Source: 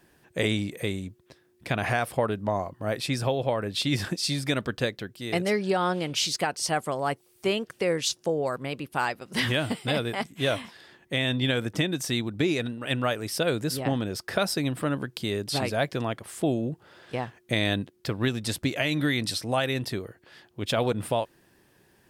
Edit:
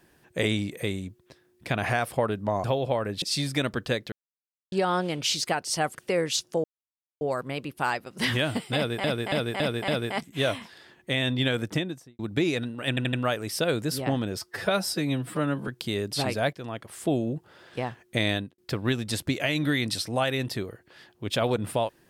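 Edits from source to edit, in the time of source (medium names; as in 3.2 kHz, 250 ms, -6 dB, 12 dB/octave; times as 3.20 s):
2.64–3.21 s: delete
3.79–4.14 s: delete
5.04–5.64 s: mute
6.87–7.67 s: delete
8.36 s: insert silence 0.57 s
9.91–10.19 s: loop, 5 plays
11.69–12.22 s: studio fade out
12.92 s: stutter 0.08 s, 4 plays
14.18–15.04 s: stretch 1.5×
15.89–16.41 s: fade in, from -12 dB
17.65–17.94 s: fade out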